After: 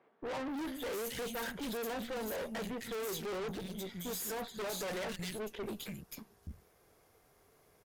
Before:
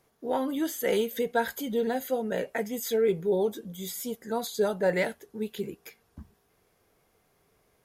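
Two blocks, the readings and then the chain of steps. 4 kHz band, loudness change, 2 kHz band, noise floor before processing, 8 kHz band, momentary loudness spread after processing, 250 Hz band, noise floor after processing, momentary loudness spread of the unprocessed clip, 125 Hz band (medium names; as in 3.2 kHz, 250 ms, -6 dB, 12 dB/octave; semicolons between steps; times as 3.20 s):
-3.5 dB, -10.0 dB, -7.5 dB, -70 dBFS, -4.0 dB, 8 LU, -9.0 dB, -68 dBFS, 11 LU, -6.0 dB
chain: wavefolder -21.5 dBFS; three bands offset in time mids, highs, lows 260/290 ms, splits 190/2800 Hz; valve stage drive 42 dB, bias 0.6; trim +5 dB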